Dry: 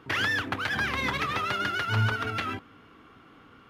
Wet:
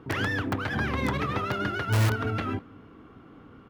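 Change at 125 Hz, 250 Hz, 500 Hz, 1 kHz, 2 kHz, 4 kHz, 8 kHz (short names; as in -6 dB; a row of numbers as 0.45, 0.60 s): +4.5, +6.0, +4.5, -1.5, -3.5, -5.5, +1.5 dB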